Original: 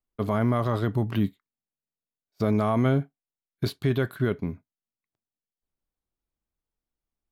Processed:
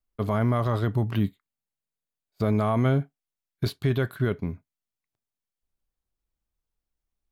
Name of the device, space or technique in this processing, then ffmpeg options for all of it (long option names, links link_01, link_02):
low shelf boost with a cut just above: -filter_complex "[0:a]asettb=1/sr,asplit=3[link_01][link_02][link_03];[link_01]atrim=end=1.234[link_04];[link_02]atrim=start=1.23:end=2.81,asetpts=PTS-STARTPTS,afade=type=in:duration=0.004:curve=qsin,afade=type=out:start_time=1.576:duration=0.004:curve=qsin,bandreject=frequency=5600:width=6[link_05];[link_03]atrim=start=2.806[link_06];[link_04][link_05]acrossfade=duration=0.004:curve1=hsin:curve2=qsin[link_07];[link_07][link_06]acrossfade=duration=0.004:curve1=qsin:curve2=hsin,lowshelf=frequency=74:gain=7.5,equalizer=frequency=270:width_type=o:width=1.1:gain=-2.5"